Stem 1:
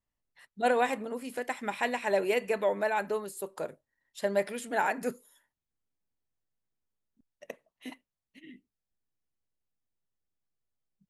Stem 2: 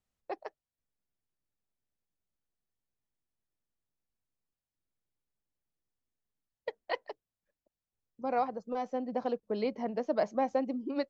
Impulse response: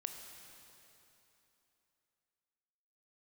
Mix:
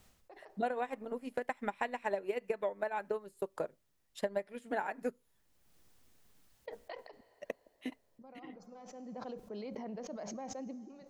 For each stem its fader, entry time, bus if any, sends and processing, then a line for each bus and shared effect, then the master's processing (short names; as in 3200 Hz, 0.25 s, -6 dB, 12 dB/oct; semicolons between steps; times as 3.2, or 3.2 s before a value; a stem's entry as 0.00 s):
-4.0 dB, 0.00 s, no send, high shelf 3000 Hz -10 dB; transient shaper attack +8 dB, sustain -9 dB
-19.0 dB, 0.00 s, send -9.5 dB, fast leveller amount 100%; auto duck -23 dB, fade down 0.30 s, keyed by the first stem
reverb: on, RT60 3.2 s, pre-delay 18 ms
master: compressor 4:1, threshold -32 dBFS, peak gain reduction 10.5 dB